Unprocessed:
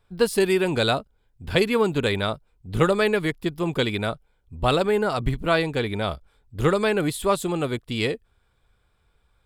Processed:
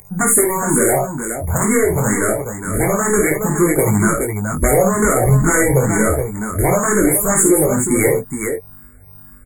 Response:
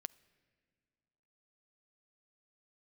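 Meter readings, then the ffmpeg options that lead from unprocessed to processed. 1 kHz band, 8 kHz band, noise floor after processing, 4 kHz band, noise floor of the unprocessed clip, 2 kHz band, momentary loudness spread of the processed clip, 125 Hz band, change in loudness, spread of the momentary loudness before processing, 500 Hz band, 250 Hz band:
+7.0 dB, +23.5 dB, -41 dBFS, under -35 dB, -67 dBFS, +6.5 dB, 9 LU, +10.0 dB, +8.0 dB, 9 LU, +6.5 dB, +9.0 dB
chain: -filter_complex "[0:a]aeval=exprs='val(0)+0.0355*sin(2*PI*5500*n/s)':c=same,aeval=exprs='0.668*sin(PI/2*5.01*val(0)/0.668)':c=same,highshelf=f=5.5k:g=-4.5,flanger=delay=19.5:depth=4:speed=0.26,acompressor=threshold=-12dB:ratio=6,afftfilt=real='re*(1-between(b*sr/4096,2300,6600))':imag='im*(1-between(b*sr/4096,2300,6600))':win_size=4096:overlap=0.75,aeval=exprs='val(0)+0.00447*(sin(2*PI*50*n/s)+sin(2*PI*2*50*n/s)/2+sin(2*PI*3*50*n/s)/3+sin(2*PI*4*50*n/s)/4+sin(2*PI*5*50*n/s)/5)':c=same,aexciter=amount=4:drive=4:freq=3.9k,asplit=2[a][b];[b]aecho=0:1:52|68|420:0.501|0.266|0.447[c];[a][c]amix=inputs=2:normalize=0,dynaudnorm=f=390:g=7:m=16dB,alimiter=level_in=3dB:limit=-1dB:release=50:level=0:latency=1,asplit=2[d][e];[e]afreqshift=2.1[f];[d][f]amix=inputs=2:normalize=1"

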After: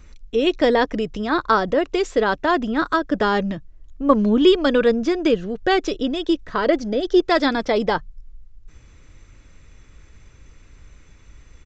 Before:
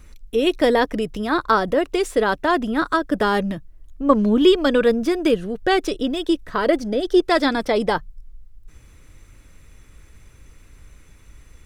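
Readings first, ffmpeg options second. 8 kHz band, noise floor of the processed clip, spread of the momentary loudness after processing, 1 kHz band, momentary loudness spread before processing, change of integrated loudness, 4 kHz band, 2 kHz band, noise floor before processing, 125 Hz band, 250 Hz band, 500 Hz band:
n/a, -49 dBFS, 7 LU, 0.0 dB, 7 LU, 0.0 dB, 0.0 dB, 0.0 dB, -49 dBFS, 0.0 dB, 0.0 dB, 0.0 dB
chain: -af "aresample=16000,aresample=44100"

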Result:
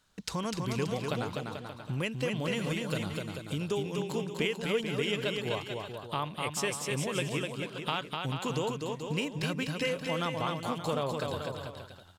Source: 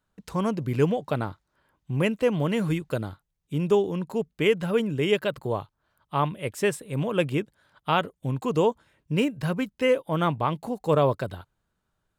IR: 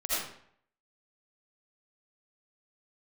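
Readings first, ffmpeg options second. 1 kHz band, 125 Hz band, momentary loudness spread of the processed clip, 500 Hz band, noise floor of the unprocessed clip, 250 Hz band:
-6.5 dB, -6.5 dB, 6 LU, -8.5 dB, -78 dBFS, -7.0 dB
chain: -af "equalizer=f=5.1k:w=0.46:g=13,acompressor=threshold=-39dB:ratio=3,aecho=1:1:250|437.5|578.1|683.6|762.7:0.631|0.398|0.251|0.158|0.1,volume=3.5dB"

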